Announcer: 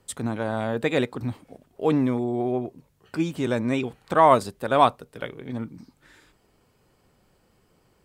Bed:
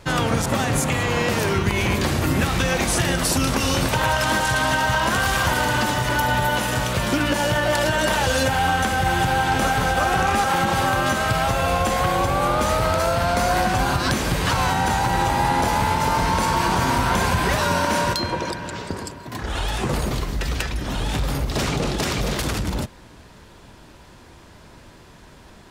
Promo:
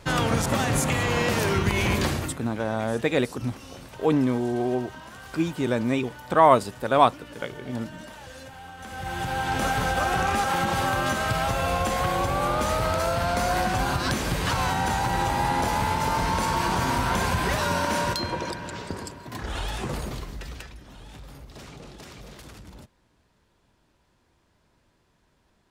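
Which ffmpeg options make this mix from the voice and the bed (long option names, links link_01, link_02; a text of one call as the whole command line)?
ffmpeg -i stem1.wav -i stem2.wav -filter_complex "[0:a]adelay=2200,volume=0dB[link_01];[1:a]volume=16dB,afade=type=out:start_time=2.04:duration=0.34:silence=0.0944061,afade=type=in:start_time=8.77:duration=0.93:silence=0.11885,afade=type=out:start_time=19.41:duration=1.44:silence=0.158489[link_02];[link_01][link_02]amix=inputs=2:normalize=0" out.wav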